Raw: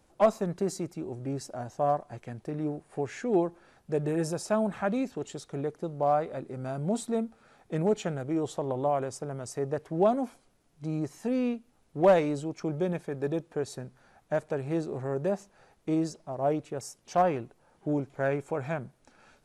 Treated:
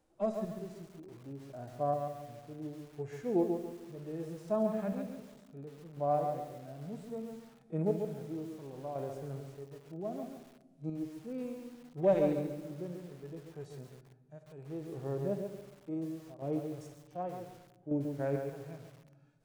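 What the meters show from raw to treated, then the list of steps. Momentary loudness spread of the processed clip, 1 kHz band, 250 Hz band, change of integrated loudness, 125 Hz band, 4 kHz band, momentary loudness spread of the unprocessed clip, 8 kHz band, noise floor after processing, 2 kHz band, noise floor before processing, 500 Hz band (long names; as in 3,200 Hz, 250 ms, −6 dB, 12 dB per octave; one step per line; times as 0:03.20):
17 LU, −9.0 dB, −6.5 dB, −7.0 dB, −6.5 dB, below −10 dB, 12 LU, below −15 dB, −62 dBFS, −14.0 dB, −66 dBFS, −7.0 dB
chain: parametric band 360 Hz +3.5 dB 2 octaves
harmonic and percussive parts rebalanced percussive −17 dB
square-wave tremolo 0.67 Hz, depth 60%, duty 30%
rectangular room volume 1,400 cubic metres, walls mixed, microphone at 0.56 metres
feedback echo at a low word length 138 ms, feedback 35%, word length 8 bits, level −5.5 dB
level −7 dB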